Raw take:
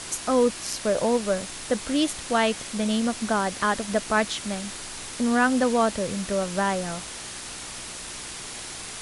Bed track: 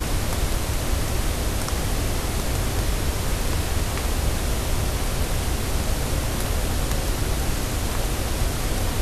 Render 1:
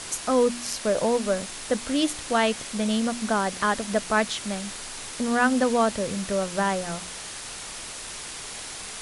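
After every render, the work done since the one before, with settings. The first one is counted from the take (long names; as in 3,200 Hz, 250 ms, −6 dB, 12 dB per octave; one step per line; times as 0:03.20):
hum removal 60 Hz, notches 6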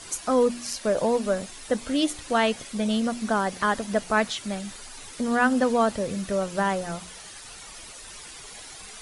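broadband denoise 10 dB, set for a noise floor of −38 dBFS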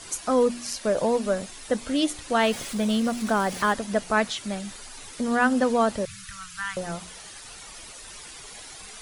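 0:02.40–0:03.73: converter with a step at zero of −35 dBFS
0:06.05–0:06.77: elliptic band-stop filter 120–1,300 Hz, stop band 60 dB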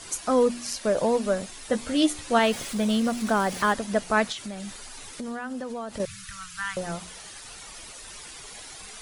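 0:01.71–0:02.39: double-tracking delay 13 ms −6 dB
0:04.32–0:06.00: downward compressor, threshold −31 dBFS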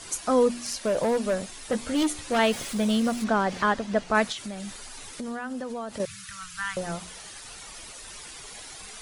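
0:00.59–0:02.39: hard clipping −20 dBFS
0:03.24–0:04.15: high-frequency loss of the air 85 metres
0:05.93–0:06.42: high-pass filter 110 Hz 6 dB per octave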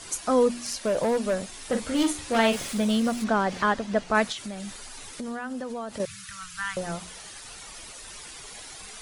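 0:01.49–0:02.81: double-tracking delay 44 ms −7 dB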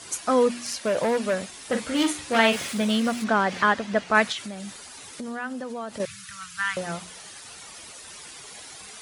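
dynamic equaliser 2,100 Hz, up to +6 dB, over −40 dBFS, Q 0.71
high-pass filter 83 Hz 12 dB per octave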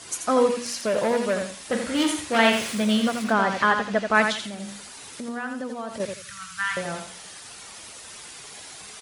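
repeating echo 84 ms, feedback 23%, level −6.5 dB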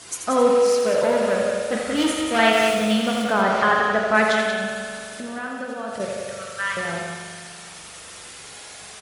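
single-tap delay 183 ms −7 dB
spring reverb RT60 2.4 s, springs 41 ms, chirp 55 ms, DRR 2 dB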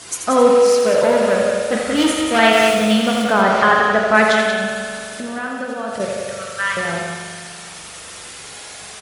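level +5 dB
brickwall limiter −1 dBFS, peak gain reduction 2 dB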